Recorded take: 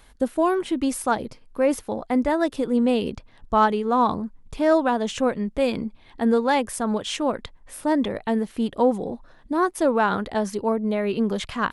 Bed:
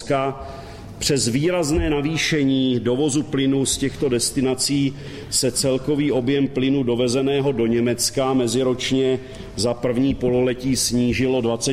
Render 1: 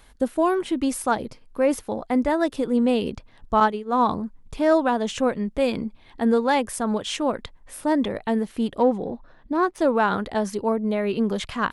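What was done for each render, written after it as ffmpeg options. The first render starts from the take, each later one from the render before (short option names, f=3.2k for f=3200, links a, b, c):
-filter_complex "[0:a]asettb=1/sr,asplit=3[a][b][c];[a]atrim=end=3.604[d];[b]atrim=start=3.6:end=4.07,asetpts=PTS-STARTPTS,afade=t=in:d=0.004:c=qsin,afade=t=out:st=0.466:d=0.004:c=qsin,agate=range=-33dB:threshold=-19dB:ratio=3:release=100:detection=peak[e];[c]atrim=start=4.066[f];[d][e]acrossfade=d=0.004:c1=hsin:c2=qsin[g];[g][f]acrossfade=d=0.004:c1=qsin:c2=hsin,asettb=1/sr,asplit=3[h][i][j];[h]atrim=end=8.794[k];[i]atrim=start=8.79:end=9.8,asetpts=PTS-STARTPTS,afade=t=in:d=0.004:c=qsin,afade=t=out:st=1.006:d=0.004:c=qsin,adynamicsmooth=sensitivity=3:basefreq=4.6k[l];[j]atrim=start=9.796[m];[k][l]acrossfade=d=0.004:c1=hsin:c2=qsin[n];[n][m]acrossfade=d=0.004:c1=qsin:c2=hsin"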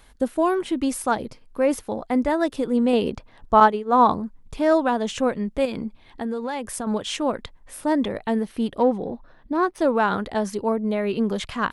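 -filter_complex "[0:a]asettb=1/sr,asplit=3[a][b][c];[a]atrim=end=2.934[d];[b]atrim=start=2.93:end=4.13,asetpts=PTS-STARTPTS,afade=t=in:d=0.004:c=qsin,afade=t=out:st=1.196:d=0.004:c=qsin,equalizer=f=750:w=0.48:g=5[e];[c]atrim=start=4.126[f];[d][e]acrossfade=d=0.004:c1=hsin:c2=qsin[g];[g][f]acrossfade=d=0.004:c1=qsin:c2=hsin,asettb=1/sr,asplit=3[h][i][j];[h]atrim=end=5.654[k];[i]atrim=start=5.65:end=6.87,asetpts=PTS-STARTPTS,afade=t=in:d=0.004:c=qsin,afade=t=out:st=1.216:d=0.004:c=qsin,acompressor=threshold=-24dB:ratio=6:attack=3.2:release=140:knee=1:detection=peak[l];[j]atrim=start=6.866[m];[k][l]acrossfade=d=0.004:c1=hsin:c2=qsin[n];[n][m]acrossfade=d=0.004:c1=qsin:c2=hsin,asettb=1/sr,asplit=3[o][p][q];[o]atrim=end=8.364[r];[p]atrim=start=8.36:end=9.84,asetpts=PTS-STARTPTS,afade=t=in:d=0.004:c=qsin,afade=t=out:st=1.476:d=0.004:c=qsin,bandreject=f=7.2k:w=7[s];[q]atrim=start=9.836[t];[r][s]acrossfade=d=0.004:c1=hsin:c2=qsin[u];[u][t]acrossfade=d=0.004:c1=qsin:c2=hsin"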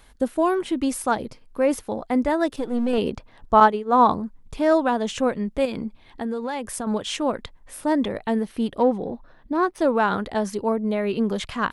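-filter_complex "[0:a]asettb=1/sr,asplit=3[a][b][c];[a]atrim=end=2.564[d];[b]atrim=start=2.56:end=2.98,asetpts=PTS-STARTPTS,afade=t=in:d=0.004:c=qsin,afade=t=out:st=0.416:d=0.004:c=qsin,aeval=exprs='if(lt(val(0),0),0.447*val(0),val(0))':c=same[e];[c]atrim=start=2.976[f];[d][e]acrossfade=d=0.004:c1=hsin:c2=qsin[g];[g][f]acrossfade=d=0.004:c1=qsin:c2=hsin"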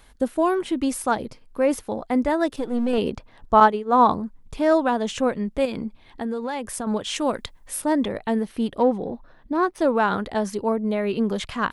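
-filter_complex "[0:a]asettb=1/sr,asplit=3[a][b][c];[a]atrim=end=7.164[d];[b]atrim=start=7.16:end=7.82,asetpts=PTS-STARTPTS,afade=t=in:d=0.004:c=qsin,afade=t=out:st=0.656:d=0.004:c=qsin,highshelf=f=3.7k:g=10.5[e];[c]atrim=start=7.816[f];[d][e]acrossfade=d=0.004:c1=hsin:c2=qsin[g];[g][f]acrossfade=d=0.004:c1=qsin:c2=hsin"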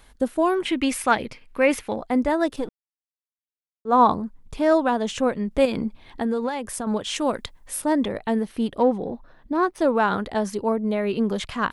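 -filter_complex "[0:a]asettb=1/sr,asplit=3[a][b][c];[a]atrim=end=0.654[d];[b]atrim=start=0.65:end=1.96,asetpts=PTS-STARTPTS,afade=t=in:d=0.004:c=qsin,afade=t=out:st=1.306:d=0.004:c=qsin,equalizer=f=2.3k:t=o:w=1.2:g=13[e];[c]atrim=start=1.956[f];[d][e]acrossfade=d=0.004:c1=hsin:c2=qsin[g];[g][f]acrossfade=d=0.004:c1=qsin:c2=hsin,asplit=5[h][i][j][k][l];[h]atrim=end=2.69,asetpts=PTS-STARTPTS,afade=t=out:st=2.686:d=0.004:c=hsin[m];[i]atrim=start=2.69:end=3.85,asetpts=PTS-STARTPTS,volume=0[n];[j]atrim=start=3.85:end=5.512,asetpts=PTS-STARTPTS,afade=t=in:d=0.004:c=hsin[o];[k]atrim=start=5.508:end=6.492,asetpts=PTS-STARTPTS,volume=3.5dB[p];[l]atrim=start=6.488[q];[m][n][o]concat=n=3:v=0:a=1[r];[r][p]acrossfade=d=0.004:c1=hsin:c2=hsin[s];[s][q]acrossfade=d=0.004:c1=hsin:c2=hsin"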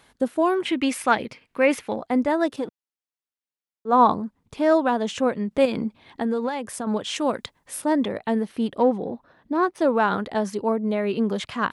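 -af "highpass=110,highshelf=f=8.8k:g=-6"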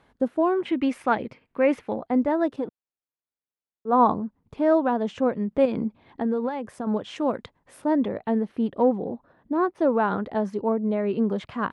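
-af "lowpass=f=1k:p=1"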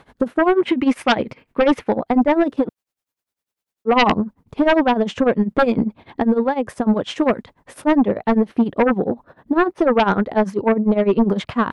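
-af "tremolo=f=10:d=0.87,aeval=exprs='0.335*sin(PI/2*3.16*val(0)/0.335)':c=same"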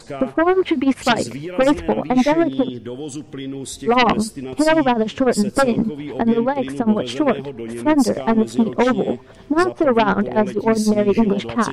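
-filter_complex "[1:a]volume=-10dB[a];[0:a][a]amix=inputs=2:normalize=0"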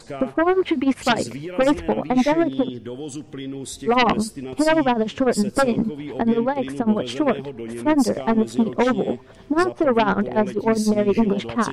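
-af "volume=-2.5dB"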